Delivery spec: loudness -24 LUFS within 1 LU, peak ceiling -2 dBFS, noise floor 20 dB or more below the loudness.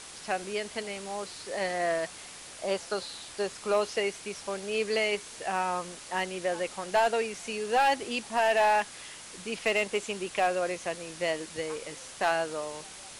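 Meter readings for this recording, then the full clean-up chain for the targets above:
clipped samples 0.4%; clipping level -18.0 dBFS; noise floor -46 dBFS; noise floor target -51 dBFS; loudness -30.5 LUFS; peak level -18.0 dBFS; loudness target -24.0 LUFS
-> clip repair -18 dBFS; noise print and reduce 6 dB; trim +6.5 dB

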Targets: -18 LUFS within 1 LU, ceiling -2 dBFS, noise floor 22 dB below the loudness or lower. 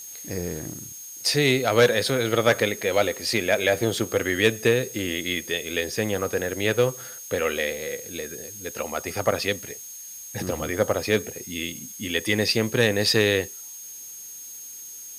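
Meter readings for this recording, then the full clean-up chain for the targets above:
steady tone 6.5 kHz; tone level -39 dBFS; noise floor -40 dBFS; noise floor target -46 dBFS; loudness -24.0 LUFS; peak level -4.5 dBFS; loudness target -18.0 LUFS
-> band-stop 6.5 kHz, Q 30; noise reduction 6 dB, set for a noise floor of -40 dBFS; trim +6 dB; peak limiter -2 dBFS

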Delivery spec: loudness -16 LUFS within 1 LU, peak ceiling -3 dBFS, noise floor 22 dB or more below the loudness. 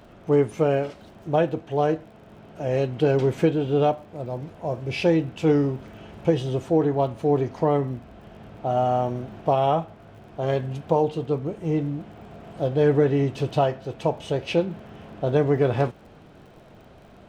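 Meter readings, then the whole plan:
tick rate 44 per s; loudness -24.0 LUFS; peak level -7.5 dBFS; loudness target -16.0 LUFS
-> de-click; trim +8 dB; peak limiter -3 dBFS

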